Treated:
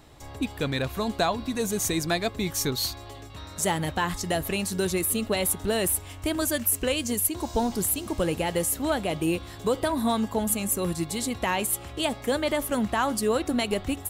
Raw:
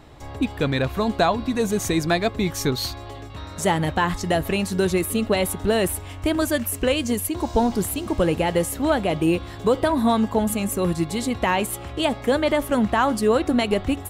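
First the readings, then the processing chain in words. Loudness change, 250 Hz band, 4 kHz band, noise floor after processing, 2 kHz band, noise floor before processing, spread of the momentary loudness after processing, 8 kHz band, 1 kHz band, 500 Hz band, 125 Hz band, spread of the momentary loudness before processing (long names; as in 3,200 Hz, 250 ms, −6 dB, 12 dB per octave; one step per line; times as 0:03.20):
−4.0 dB, −6.0 dB, −2.0 dB, −42 dBFS, −4.5 dB, −37 dBFS, 4 LU, +3.0 dB, −5.5 dB, −6.0 dB, −6.0 dB, 5 LU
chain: high-shelf EQ 4,700 Hz +11 dB
level −6 dB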